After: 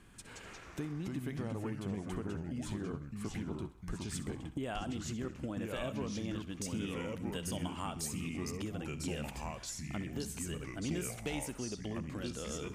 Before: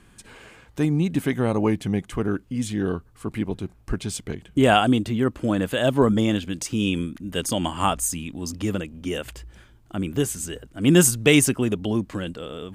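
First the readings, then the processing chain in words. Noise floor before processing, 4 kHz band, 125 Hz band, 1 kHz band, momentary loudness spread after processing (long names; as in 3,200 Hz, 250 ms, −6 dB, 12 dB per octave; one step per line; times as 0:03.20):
−54 dBFS, −16.5 dB, −14.5 dB, −18.0 dB, 4 LU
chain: downward compressor, threshold −32 dBFS, peak gain reduction 20 dB
on a send: feedback echo with a high-pass in the loop 64 ms, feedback 52%, level −14.5 dB
on the sum: delay with pitch and tempo change per echo 138 ms, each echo −3 semitones, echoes 2
level −6 dB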